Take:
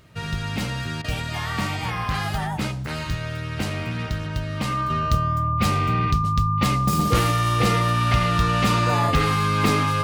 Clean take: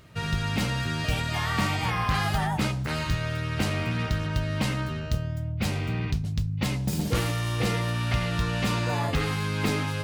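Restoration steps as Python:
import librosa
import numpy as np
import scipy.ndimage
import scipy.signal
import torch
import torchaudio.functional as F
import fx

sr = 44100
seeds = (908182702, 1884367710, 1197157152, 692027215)

y = fx.notch(x, sr, hz=1200.0, q=30.0)
y = fx.fix_interpolate(y, sr, at_s=(1.02,), length_ms=22.0)
y = fx.fix_level(y, sr, at_s=4.9, step_db=-5.5)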